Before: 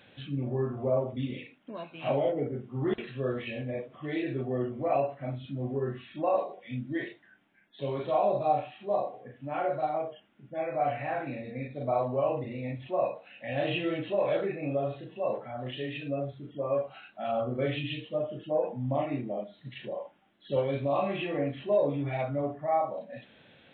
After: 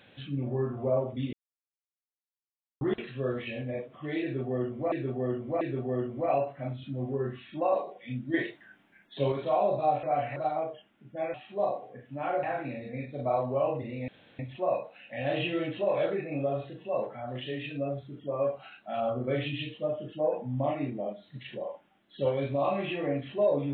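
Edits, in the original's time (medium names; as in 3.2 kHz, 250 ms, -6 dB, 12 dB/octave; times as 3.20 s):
1.33–2.81 s: mute
4.23–4.92 s: loop, 3 plays
6.96–7.94 s: gain +5.5 dB
8.65–9.74 s: swap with 10.72–11.05 s
12.70 s: insert room tone 0.31 s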